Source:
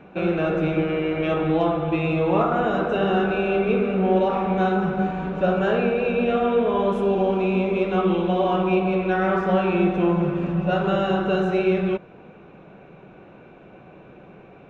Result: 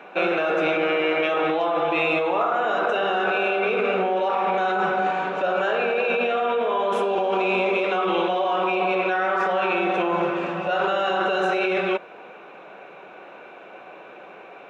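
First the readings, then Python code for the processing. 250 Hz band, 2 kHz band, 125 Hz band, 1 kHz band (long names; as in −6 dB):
−7.5 dB, +5.5 dB, −14.5 dB, +3.0 dB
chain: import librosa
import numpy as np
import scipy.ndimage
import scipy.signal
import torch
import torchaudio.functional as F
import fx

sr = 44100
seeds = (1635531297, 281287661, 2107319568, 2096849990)

p1 = scipy.signal.sosfilt(scipy.signal.butter(2, 610.0, 'highpass', fs=sr, output='sos'), x)
p2 = fx.over_compress(p1, sr, threshold_db=-30.0, ratio=-0.5)
y = p1 + F.gain(torch.from_numpy(p2), 2.0).numpy()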